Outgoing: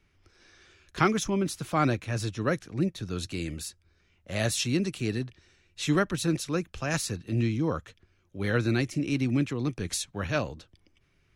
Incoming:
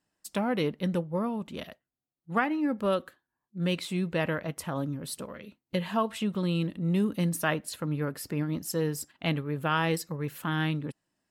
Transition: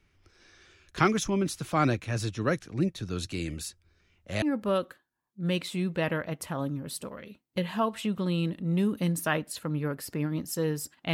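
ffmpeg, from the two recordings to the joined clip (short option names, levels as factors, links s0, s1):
-filter_complex "[0:a]apad=whole_dur=11.13,atrim=end=11.13,atrim=end=4.422[s0];[1:a]atrim=start=2.588:end=9.3[s1];[s0][s1]acrossfade=d=0.004:c1=hsin:c2=hsin"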